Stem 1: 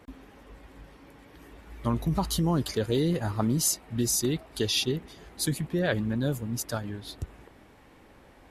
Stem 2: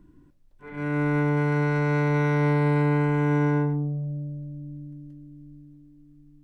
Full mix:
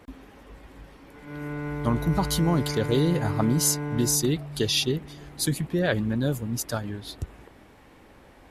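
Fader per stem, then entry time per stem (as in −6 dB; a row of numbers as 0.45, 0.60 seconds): +2.5, −9.0 decibels; 0.00, 0.50 seconds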